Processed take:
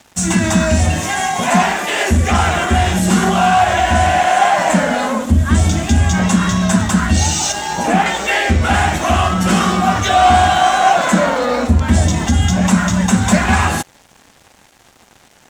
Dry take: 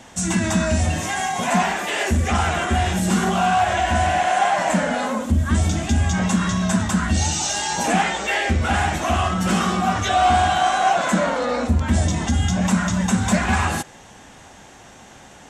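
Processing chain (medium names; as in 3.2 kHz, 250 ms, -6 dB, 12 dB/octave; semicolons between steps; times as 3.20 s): 7.52–8.06 s: treble shelf 2.5 kHz -8.5 dB; crossover distortion -42.5 dBFS; trim +6.5 dB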